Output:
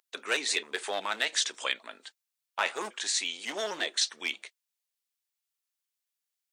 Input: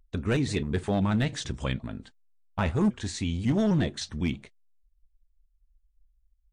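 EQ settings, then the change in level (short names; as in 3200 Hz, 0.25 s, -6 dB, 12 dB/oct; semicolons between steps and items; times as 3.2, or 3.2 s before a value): HPF 400 Hz 24 dB/oct; tilt shelf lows -8.5 dB; +1.0 dB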